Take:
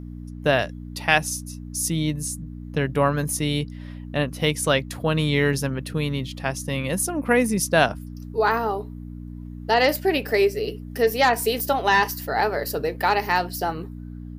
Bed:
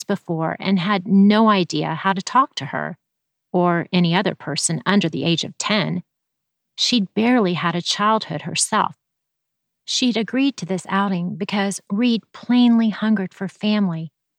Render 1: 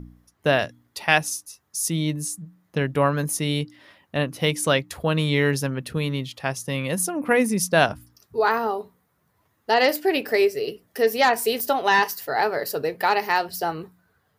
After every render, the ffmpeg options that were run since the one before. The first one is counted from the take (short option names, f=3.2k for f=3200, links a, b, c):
-af "bandreject=f=60:t=h:w=4,bandreject=f=120:t=h:w=4,bandreject=f=180:t=h:w=4,bandreject=f=240:t=h:w=4,bandreject=f=300:t=h:w=4"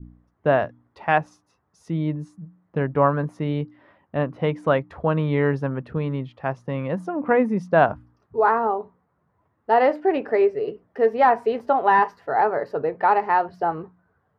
-af "lowpass=1.3k,adynamicequalizer=threshold=0.02:dfrequency=990:dqfactor=0.9:tfrequency=990:tqfactor=0.9:attack=5:release=100:ratio=0.375:range=2.5:mode=boostabove:tftype=bell"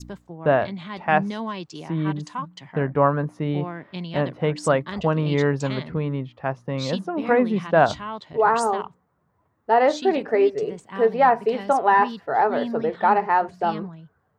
-filter_complex "[1:a]volume=-15.5dB[a];[0:a][a]amix=inputs=2:normalize=0"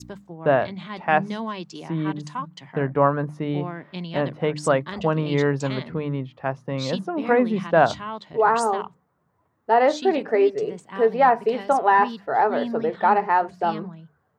-af "highpass=78,bandreject=f=50:t=h:w=6,bandreject=f=100:t=h:w=6,bandreject=f=150:t=h:w=6,bandreject=f=200:t=h:w=6"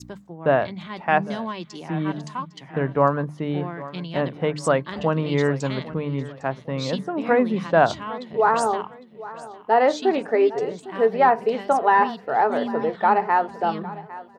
-af "aecho=1:1:805|1610|2415:0.133|0.044|0.0145"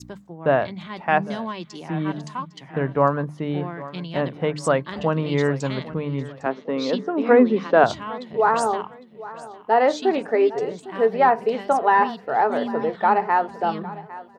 -filter_complex "[0:a]asettb=1/sr,asplit=3[a][b][c];[a]atrim=end=6.464[d];[b]atrim=start=6.46:end=7.84,asetpts=PTS-STARTPTS,afade=t=in:d=0.004:c=qsin,afade=t=out:st=1.376:d=0.004:c=qsin,highpass=f=210:w=0.5412,highpass=f=210:w=1.3066,equalizer=f=250:t=q:w=4:g=7,equalizer=f=430:t=q:w=4:g=9,equalizer=f=1.3k:t=q:w=4:g=3,lowpass=f=6.1k:w=0.5412,lowpass=f=6.1k:w=1.3066[e];[c]atrim=start=7.836[f];[d][e]acrossfade=d=0.004:c1=hsin:c2=qsin[g];[g][f]acrossfade=d=0.004:c1=qsin:c2=hsin"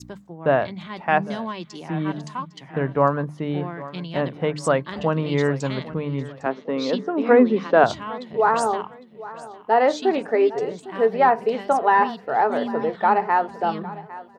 -af anull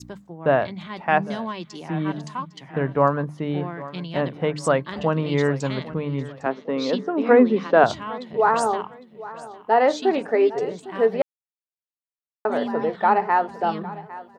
-filter_complex "[0:a]asplit=3[a][b][c];[a]atrim=end=11.22,asetpts=PTS-STARTPTS,afade=t=out:st=11.216:d=0.004:c=hsin[d];[b]atrim=start=11.22:end=12.45,asetpts=PTS-STARTPTS,volume=0[e];[c]atrim=start=12.45,asetpts=PTS-STARTPTS,afade=t=in:d=0.004:c=hsin[f];[d][e][f]concat=n=3:v=0:a=1"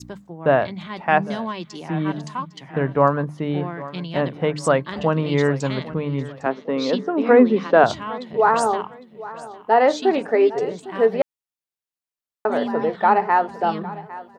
-af "volume=2dB,alimiter=limit=-2dB:level=0:latency=1"